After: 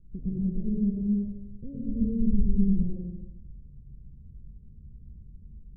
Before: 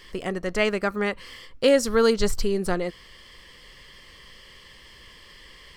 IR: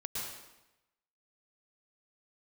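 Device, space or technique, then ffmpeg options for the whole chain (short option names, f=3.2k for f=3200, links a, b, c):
club heard from the street: -filter_complex "[0:a]alimiter=limit=-17dB:level=0:latency=1:release=13,lowpass=f=200:w=0.5412,lowpass=f=200:w=1.3066[a];[1:a]atrim=start_sample=2205[b];[a][b]afir=irnorm=-1:irlink=0,volume=6dB"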